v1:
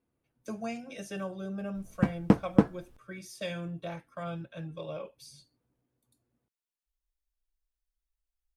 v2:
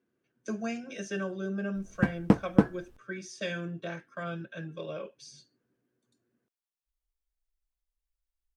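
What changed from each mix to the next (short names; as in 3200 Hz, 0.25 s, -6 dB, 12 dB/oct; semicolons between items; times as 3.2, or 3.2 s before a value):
speech: add speaker cabinet 140–7600 Hz, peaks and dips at 210 Hz +5 dB, 380 Hz +8 dB, 840 Hz -6 dB, 1600 Hz +10 dB, 2900 Hz +3 dB, 6100 Hz +6 dB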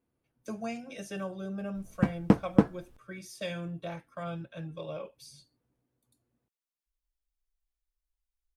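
speech: remove speaker cabinet 140–7600 Hz, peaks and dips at 210 Hz +5 dB, 380 Hz +8 dB, 840 Hz -6 dB, 1600 Hz +10 dB, 2900 Hz +3 dB, 6100 Hz +6 dB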